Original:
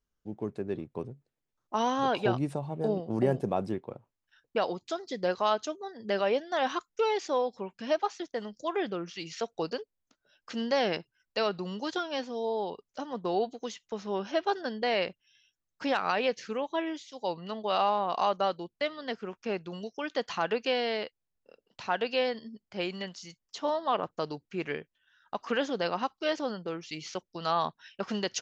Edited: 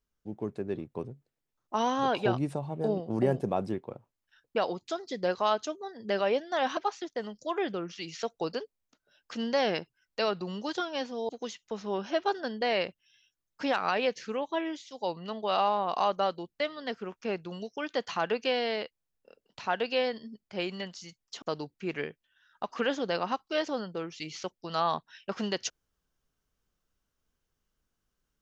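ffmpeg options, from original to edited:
ffmpeg -i in.wav -filter_complex "[0:a]asplit=4[link_01][link_02][link_03][link_04];[link_01]atrim=end=6.772[link_05];[link_02]atrim=start=7.948:end=12.472[link_06];[link_03]atrim=start=13.498:end=23.632[link_07];[link_04]atrim=start=24.128[link_08];[link_05][link_06]acrossfade=duration=0.004:curve1=hsin:curve2=hsin[link_09];[link_09][link_07]acrossfade=duration=0.004:curve1=hsin:curve2=hsin[link_10];[link_10][link_08]acrossfade=duration=0.004:curve1=hsin:curve2=hsin" out.wav

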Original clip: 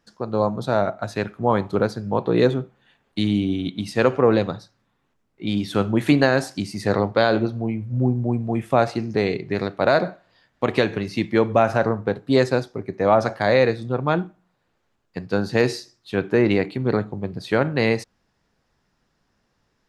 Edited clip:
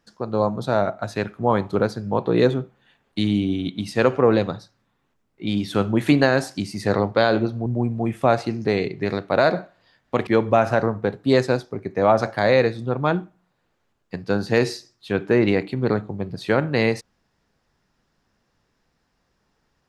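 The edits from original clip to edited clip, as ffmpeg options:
ffmpeg -i in.wav -filter_complex "[0:a]asplit=3[link_01][link_02][link_03];[link_01]atrim=end=7.662[link_04];[link_02]atrim=start=8.148:end=10.762[link_05];[link_03]atrim=start=11.298[link_06];[link_04][link_05]acrossfade=duration=0.004:curve1=hsin:curve2=hsin[link_07];[link_07][link_06]acrossfade=duration=0.004:curve1=hsin:curve2=hsin" out.wav

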